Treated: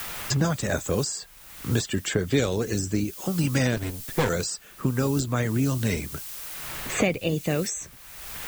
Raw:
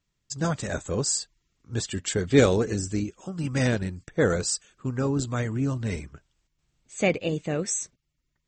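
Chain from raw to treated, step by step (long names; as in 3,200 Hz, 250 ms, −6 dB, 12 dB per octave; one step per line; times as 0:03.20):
0:03.76–0:04.29: lower of the sound and its delayed copy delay 7.8 ms
background noise blue −51 dBFS
multiband upward and downward compressor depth 100%
level +1 dB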